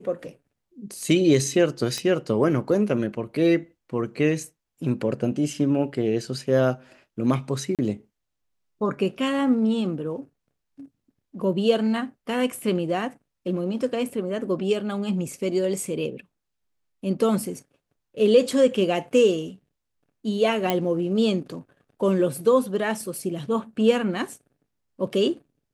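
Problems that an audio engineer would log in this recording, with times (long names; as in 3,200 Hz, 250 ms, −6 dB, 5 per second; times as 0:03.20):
0:01.98: click −14 dBFS
0:07.75–0:07.79: drop-out 37 ms
0:20.70: click −8 dBFS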